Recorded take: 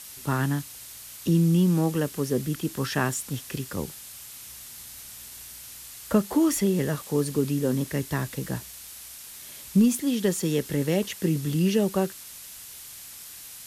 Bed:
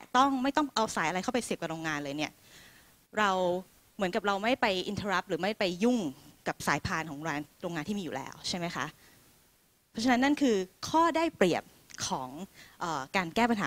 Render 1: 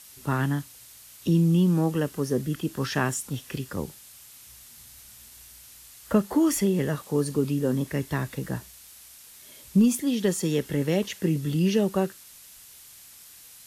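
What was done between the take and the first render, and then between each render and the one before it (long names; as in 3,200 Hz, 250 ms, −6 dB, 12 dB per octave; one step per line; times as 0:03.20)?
noise reduction from a noise print 6 dB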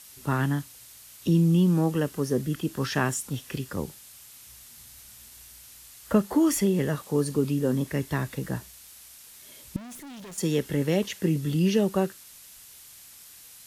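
0:09.76–0:10.38: tube saturation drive 41 dB, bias 0.65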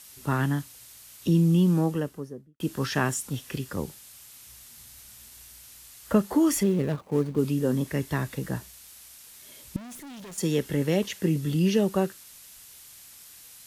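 0:01.70–0:02.60: fade out and dull
0:06.63–0:07.39: running median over 25 samples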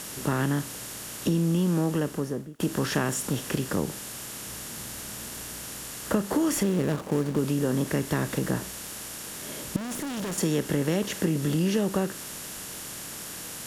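compressor on every frequency bin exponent 0.6
downward compressor 2.5 to 1, threshold −23 dBFS, peak gain reduction 6.5 dB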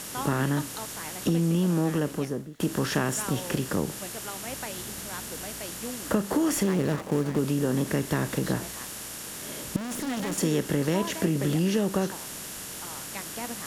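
mix in bed −11 dB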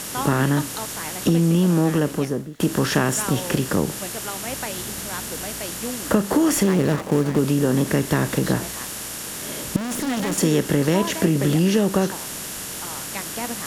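level +6.5 dB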